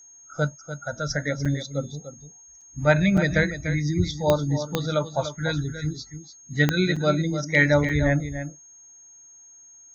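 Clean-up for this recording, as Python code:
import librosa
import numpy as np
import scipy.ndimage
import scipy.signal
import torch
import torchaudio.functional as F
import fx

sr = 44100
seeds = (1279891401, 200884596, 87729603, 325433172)

y = fx.fix_declick_ar(x, sr, threshold=10.0)
y = fx.notch(y, sr, hz=6500.0, q=30.0)
y = fx.fix_interpolate(y, sr, at_s=(1.45, 2.61, 3.17, 6.96, 7.89), length_ms=5.3)
y = fx.fix_echo_inverse(y, sr, delay_ms=294, level_db=-10.5)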